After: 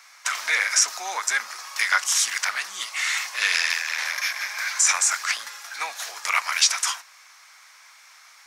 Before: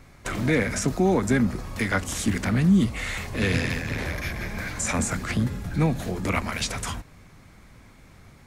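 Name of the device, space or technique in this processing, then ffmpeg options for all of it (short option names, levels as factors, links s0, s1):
headphones lying on a table: -af "highpass=f=1000:w=0.5412,highpass=f=1000:w=1.3066,equalizer=f=5600:t=o:w=0.57:g=9,volume=2.11"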